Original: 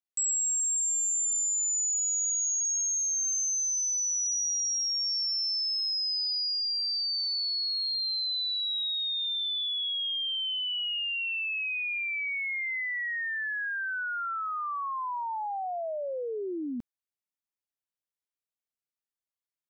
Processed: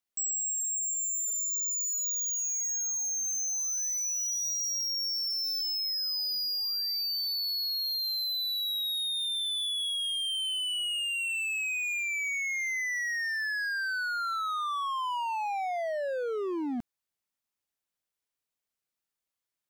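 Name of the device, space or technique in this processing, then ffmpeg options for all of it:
limiter into clipper: -filter_complex "[0:a]asplit=3[link_01][link_02][link_03];[link_01]afade=type=out:start_time=12:duration=0.02[link_04];[link_02]equalizer=frequency=950:width_type=o:width=0.71:gain=-14.5,afade=type=in:start_time=12:duration=0.02,afade=type=out:start_time=12.59:duration=0.02[link_05];[link_03]afade=type=in:start_time=12.59:duration=0.02[link_06];[link_04][link_05][link_06]amix=inputs=3:normalize=0,alimiter=level_in=6dB:limit=-24dB:level=0:latency=1:release=166,volume=-6dB,asoftclip=type=hard:threshold=-35.5dB,volume=5dB"

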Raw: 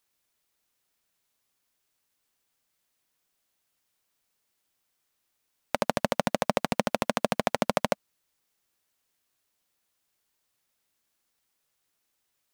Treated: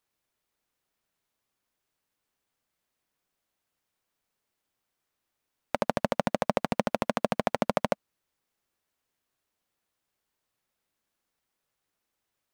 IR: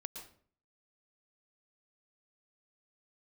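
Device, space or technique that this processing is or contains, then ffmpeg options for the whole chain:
behind a face mask: -af "highshelf=frequency=2600:gain=-8"

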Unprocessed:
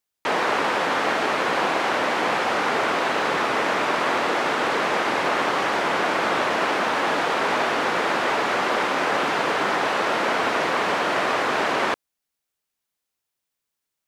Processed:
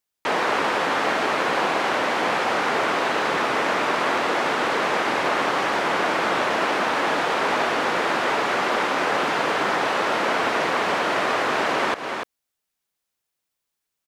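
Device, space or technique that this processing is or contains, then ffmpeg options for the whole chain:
ducked delay: -filter_complex "[0:a]asplit=3[link_01][link_02][link_03];[link_02]adelay=293,volume=-6dB[link_04];[link_03]apad=whole_len=633602[link_05];[link_04][link_05]sidechaincompress=threshold=-32dB:ratio=4:attack=42:release=154[link_06];[link_01][link_06]amix=inputs=2:normalize=0"

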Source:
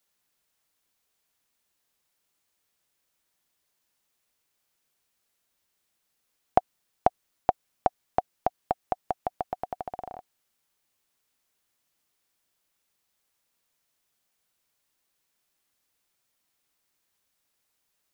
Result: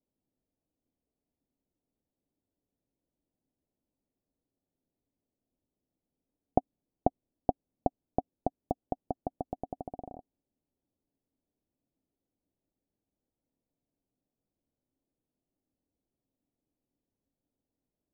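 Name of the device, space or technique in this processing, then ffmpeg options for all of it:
under water: -af "lowpass=frequency=700:width=0.5412,lowpass=frequency=700:width=1.3066,equalizer=frequency=270:width_type=o:width=0.48:gain=9,lowshelf=frequency=370:gain=8.5,volume=-5dB"

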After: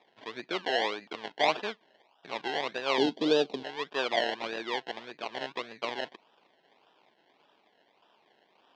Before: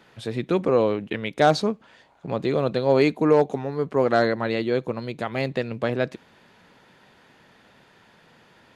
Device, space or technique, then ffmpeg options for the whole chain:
circuit-bent sampling toy: -filter_complex "[0:a]acrusher=samples=29:mix=1:aa=0.000001:lfo=1:lforange=17.4:lforate=1.7,highpass=520,equalizer=frequency=520:width_type=q:width=4:gain=-5,equalizer=frequency=1300:width_type=q:width=4:gain=-5,equalizer=frequency=3300:width_type=q:width=4:gain=4,lowpass=frequency=4400:width=0.5412,lowpass=frequency=4400:width=1.3066,asettb=1/sr,asplit=3[link_01][link_02][link_03];[link_01]atrim=end=2.984[link_04];[link_02]atrim=start=2.98:end=3.63,asetpts=PTS-STARTPTS,afade=type=in:duration=0.004:curve=qsin,afade=type=out:start_time=0.646:duration=0.004:curve=qsin,equalizer=frequency=125:width_type=o:width=1:gain=7,equalizer=frequency=250:width_type=o:width=1:gain=9,equalizer=frequency=500:width_type=o:width=1:gain=4,equalizer=frequency=1000:width_type=o:width=1:gain=-7,equalizer=frequency=2000:width_type=o:width=1:gain=-10,equalizer=frequency=4000:width_type=o:width=1:gain=4[link_05];[link_03]atrim=start=3.626[link_06];[link_04][link_05]acrossfade=duration=0.004:curve1=hsin:curve2=qsin[link_07];[link_07][link_06]acrossfade=duration=0.004:curve1=qsin:curve2=hsin,volume=-5dB"

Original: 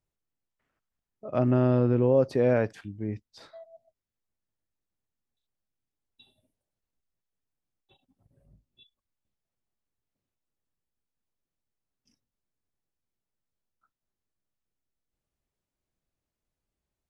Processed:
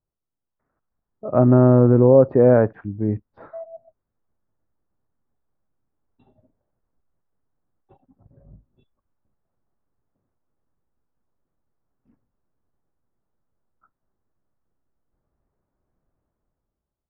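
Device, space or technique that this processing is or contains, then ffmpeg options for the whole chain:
action camera in a waterproof case: -af "lowpass=frequency=1400:width=0.5412,lowpass=frequency=1400:width=1.3066,dynaudnorm=framelen=110:gausssize=13:maxgain=12.5dB" -ar 44100 -c:a aac -b:a 128k

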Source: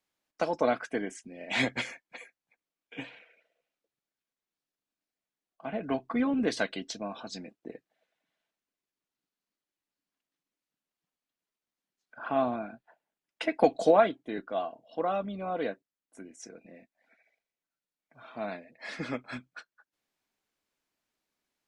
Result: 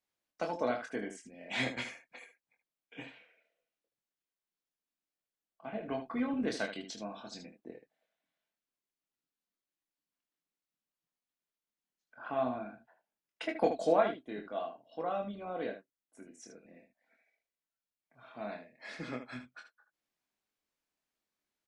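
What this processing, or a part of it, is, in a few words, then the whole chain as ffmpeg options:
slapback doubling: -filter_complex "[0:a]asplit=3[link_01][link_02][link_03];[link_02]adelay=24,volume=-5dB[link_04];[link_03]adelay=76,volume=-9dB[link_05];[link_01][link_04][link_05]amix=inputs=3:normalize=0,volume=-7dB"

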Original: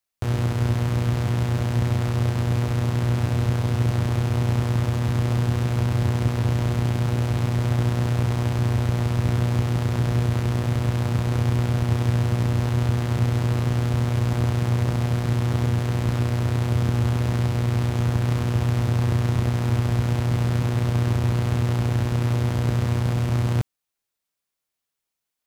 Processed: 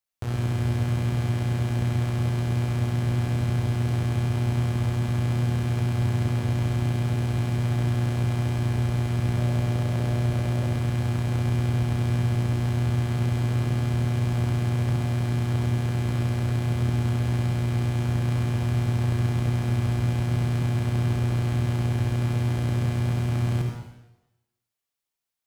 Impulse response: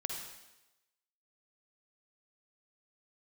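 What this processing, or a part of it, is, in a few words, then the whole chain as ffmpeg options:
bathroom: -filter_complex "[1:a]atrim=start_sample=2205[link_01];[0:a][link_01]afir=irnorm=-1:irlink=0,asettb=1/sr,asplit=3[link_02][link_03][link_04];[link_02]atrim=end=9.374[link_05];[link_03]atrim=start=9.37:end=10.74,asetpts=PTS-STARTPTS,afade=type=in:duration=0.004:curve=qsin,afade=type=out:start_time=1.366:duration=0.004:curve=qsin,equalizer=frequency=590:width_type=o:width=0.41:gain=6[link_06];[link_04]atrim=start=10.736[link_07];[link_05][link_06]acrossfade=duration=0.004:curve1=hsin:curve2=qsin[link_08];[link_08][link_07]acrossfade=duration=0.004:curve1=qsin:curve2=hsin,volume=-4.5dB"

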